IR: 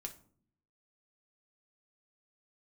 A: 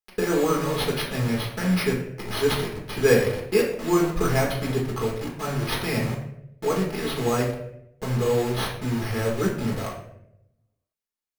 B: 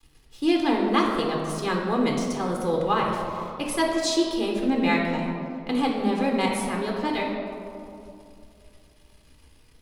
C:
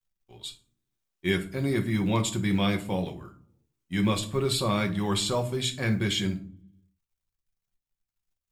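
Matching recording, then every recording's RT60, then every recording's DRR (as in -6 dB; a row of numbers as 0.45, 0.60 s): C; 0.75, 2.7, 0.55 s; -2.0, -0.5, 3.5 dB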